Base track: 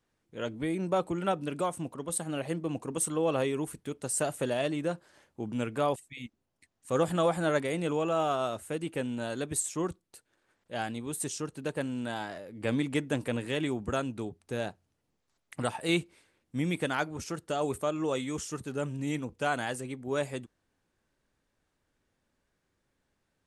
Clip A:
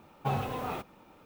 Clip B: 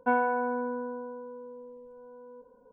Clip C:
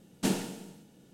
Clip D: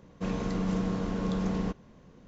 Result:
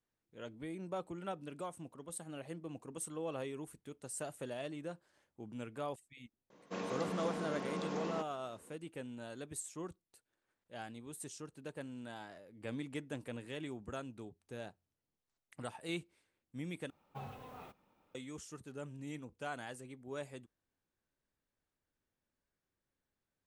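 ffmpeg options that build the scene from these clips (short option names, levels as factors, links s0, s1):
-filter_complex "[0:a]volume=0.237[s0];[4:a]highpass=340[s1];[1:a]equalizer=f=340:t=o:w=0.38:g=-3[s2];[s0]asplit=2[s3][s4];[s3]atrim=end=16.904[s5];[s2]atrim=end=1.25,asetpts=PTS-STARTPTS,volume=0.158[s6];[s4]atrim=start=18.146[s7];[s1]atrim=end=2.27,asetpts=PTS-STARTPTS,volume=0.668,afade=t=in:d=0.004:c=hsin,afade=t=out:st=2.266:d=0.004:c=hsin,adelay=286650S[s8];[s5][s6]acrossfade=d=0.004:c1=hsin:c2=hsin[s9];[s9][s7]acrossfade=d=0.004:c1=hsin:c2=hsin[s10];[s10][s8]amix=inputs=2:normalize=0"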